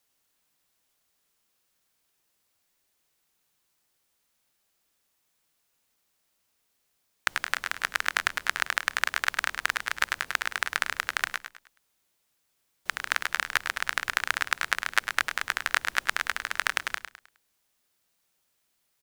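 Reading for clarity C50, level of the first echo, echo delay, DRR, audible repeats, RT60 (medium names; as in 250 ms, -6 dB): no reverb, -9.0 dB, 104 ms, no reverb, 3, no reverb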